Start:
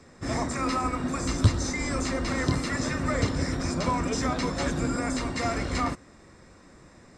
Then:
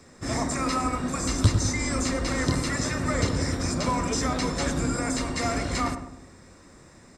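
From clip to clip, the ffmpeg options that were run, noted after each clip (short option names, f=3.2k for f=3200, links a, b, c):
-filter_complex "[0:a]highshelf=f=6.8k:g=10,asplit=2[a][b];[b]adelay=102,lowpass=f=1.1k:p=1,volume=-7dB,asplit=2[c][d];[d]adelay=102,lowpass=f=1.1k:p=1,volume=0.52,asplit=2[e][f];[f]adelay=102,lowpass=f=1.1k:p=1,volume=0.52,asplit=2[g][h];[h]adelay=102,lowpass=f=1.1k:p=1,volume=0.52,asplit=2[i][j];[j]adelay=102,lowpass=f=1.1k:p=1,volume=0.52,asplit=2[k][l];[l]adelay=102,lowpass=f=1.1k:p=1,volume=0.52[m];[a][c][e][g][i][k][m]amix=inputs=7:normalize=0"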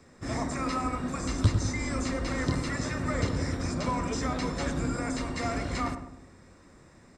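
-filter_complex "[0:a]acrossover=split=10000[a][b];[b]acompressor=threshold=-56dB:ratio=4:attack=1:release=60[c];[a][c]amix=inputs=2:normalize=0,bass=f=250:g=1,treble=f=4k:g=-5,volume=-4dB"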